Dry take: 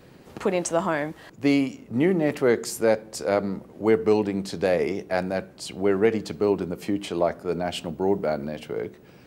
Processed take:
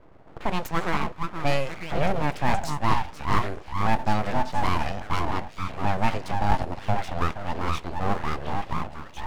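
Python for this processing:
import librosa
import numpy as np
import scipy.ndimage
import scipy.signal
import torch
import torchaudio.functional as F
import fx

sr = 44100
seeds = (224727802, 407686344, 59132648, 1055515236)

y = fx.env_lowpass(x, sr, base_hz=990.0, full_db=-17.0)
y = fx.echo_stepped(y, sr, ms=472, hz=490.0, octaves=1.4, feedback_pct=70, wet_db=-1)
y = np.abs(y)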